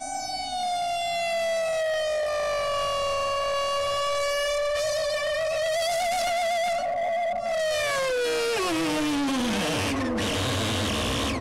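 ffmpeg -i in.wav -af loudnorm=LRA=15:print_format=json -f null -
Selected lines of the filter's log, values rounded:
"input_i" : "-25.7",
"input_tp" : "-22.2",
"input_lra" : "0.6",
"input_thresh" : "-35.7",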